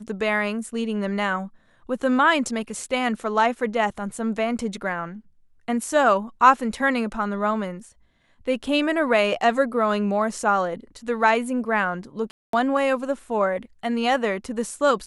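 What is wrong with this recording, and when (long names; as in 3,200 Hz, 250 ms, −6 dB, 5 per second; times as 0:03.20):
0:12.31–0:12.53: drop-out 223 ms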